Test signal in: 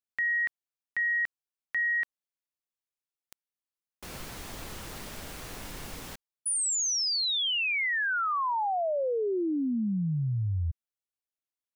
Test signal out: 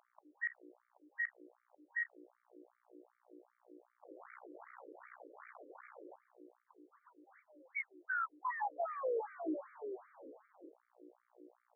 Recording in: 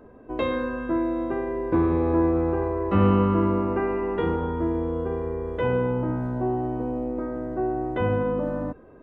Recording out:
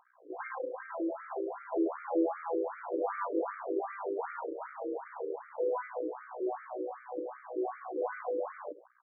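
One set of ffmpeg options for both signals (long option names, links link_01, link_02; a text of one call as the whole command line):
ffmpeg -i in.wav -af "lowpass=frequency=2200:poles=1,aeval=exprs='val(0)+0.0126*(sin(2*PI*60*n/s)+sin(2*PI*2*60*n/s)/2+sin(2*PI*3*60*n/s)/3+sin(2*PI*4*60*n/s)/4+sin(2*PI*5*60*n/s)/5)':channel_layout=same,aecho=1:1:163:0.106,aresample=16000,aeval=exprs='max(val(0),0)':channel_layout=same,aresample=44100,afftfilt=real='re*between(b*sr/1024,390*pow(1700/390,0.5+0.5*sin(2*PI*2.6*pts/sr))/1.41,390*pow(1700/390,0.5+0.5*sin(2*PI*2.6*pts/sr))*1.41)':imag='im*between(b*sr/1024,390*pow(1700/390,0.5+0.5*sin(2*PI*2.6*pts/sr))/1.41,390*pow(1700/390,0.5+0.5*sin(2*PI*2.6*pts/sr))*1.41)':win_size=1024:overlap=0.75" out.wav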